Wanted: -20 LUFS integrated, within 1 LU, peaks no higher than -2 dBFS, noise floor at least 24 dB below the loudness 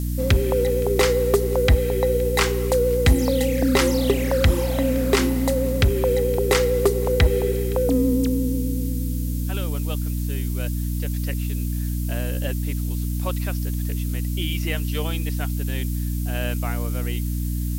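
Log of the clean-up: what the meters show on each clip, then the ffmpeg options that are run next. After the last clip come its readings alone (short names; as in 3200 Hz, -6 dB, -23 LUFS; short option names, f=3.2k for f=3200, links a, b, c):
hum 60 Hz; harmonics up to 300 Hz; hum level -22 dBFS; noise floor -25 dBFS; noise floor target -47 dBFS; loudness -22.5 LUFS; peak -7.0 dBFS; loudness target -20.0 LUFS
-> -af "bandreject=f=60:t=h:w=6,bandreject=f=120:t=h:w=6,bandreject=f=180:t=h:w=6,bandreject=f=240:t=h:w=6,bandreject=f=300:t=h:w=6"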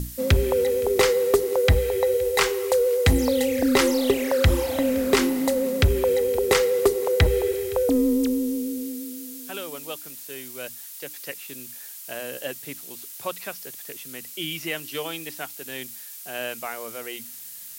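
hum none; noise floor -40 dBFS; noise floor target -48 dBFS
-> -af "afftdn=nr=8:nf=-40"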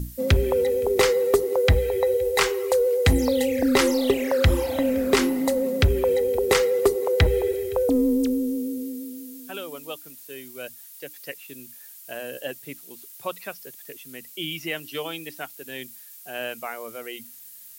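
noise floor -45 dBFS; noise floor target -47 dBFS
-> -af "afftdn=nr=6:nf=-45"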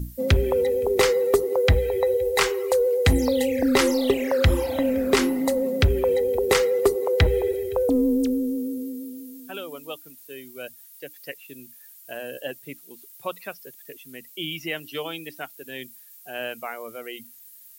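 noise floor -48 dBFS; loudness -22.5 LUFS; peak -9.0 dBFS; loudness target -20.0 LUFS
-> -af "volume=2.5dB"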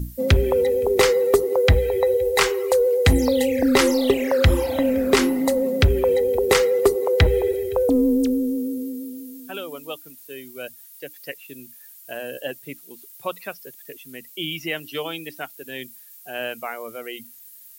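loudness -20.0 LUFS; peak -6.5 dBFS; noise floor -46 dBFS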